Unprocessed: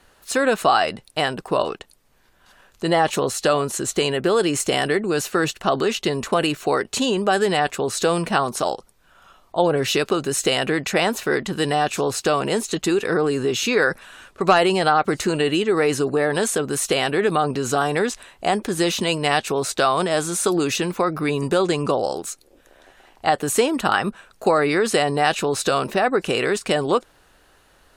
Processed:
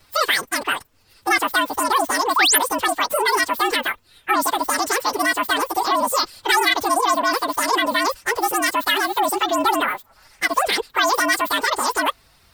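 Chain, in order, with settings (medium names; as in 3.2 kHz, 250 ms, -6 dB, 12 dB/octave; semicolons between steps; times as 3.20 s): frequency axis rescaled in octaves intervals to 114%; in parallel at -3 dB: peak limiter -17.5 dBFS, peak gain reduction 10.5 dB; on the sum: painted sound rise, 5.26–5.76 s, 410–6900 Hz -16 dBFS; wide varispeed 2.23×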